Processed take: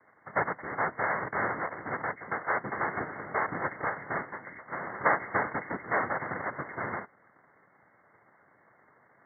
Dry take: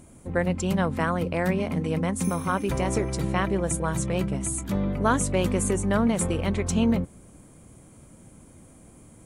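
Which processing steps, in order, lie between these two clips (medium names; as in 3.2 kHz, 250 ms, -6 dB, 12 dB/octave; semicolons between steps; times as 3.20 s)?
high-pass 510 Hz 24 dB/octave; noise-vocoded speech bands 3; brick-wall FIR low-pass 2.2 kHz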